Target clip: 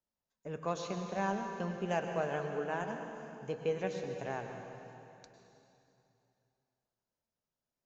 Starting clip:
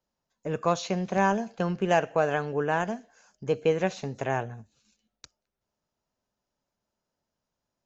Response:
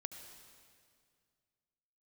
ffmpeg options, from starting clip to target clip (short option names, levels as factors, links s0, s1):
-filter_complex "[0:a]flanger=delay=3.1:depth=2.4:regen=-84:speed=0.72:shape=triangular[s0];[1:a]atrim=start_sample=2205,asetrate=30429,aresample=44100[s1];[s0][s1]afir=irnorm=-1:irlink=0,volume=0.631"